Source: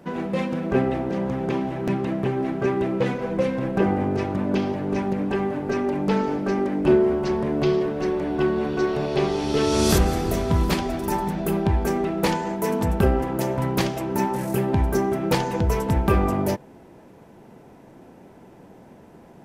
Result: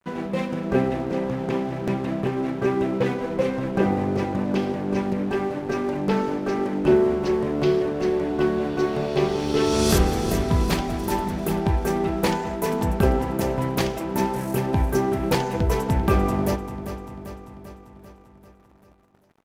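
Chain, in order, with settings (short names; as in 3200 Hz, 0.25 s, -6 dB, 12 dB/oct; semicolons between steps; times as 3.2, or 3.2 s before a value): crossover distortion -42 dBFS; feedback echo 0.393 s, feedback 59%, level -11.5 dB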